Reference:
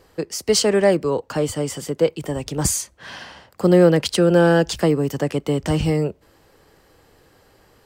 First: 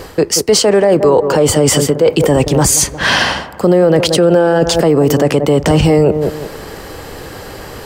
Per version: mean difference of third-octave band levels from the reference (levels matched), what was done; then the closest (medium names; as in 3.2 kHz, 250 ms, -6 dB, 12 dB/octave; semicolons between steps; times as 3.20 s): 6.5 dB: dynamic bell 700 Hz, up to +8 dB, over -29 dBFS, Q 0.79; reverse; compression 5:1, threshold -27 dBFS, peak gain reduction 20.5 dB; reverse; feedback echo behind a low-pass 178 ms, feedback 32%, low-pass 1.2 kHz, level -12 dB; loudness maximiser +26 dB; trim -1 dB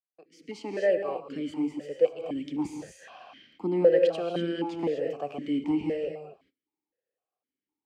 10.0 dB: fade-in on the opening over 0.90 s; gated-style reverb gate 270 ms rising, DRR 5 dB; gate -46 dBFS, range -27 dB; stepped vowel filter 3.9 Hz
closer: first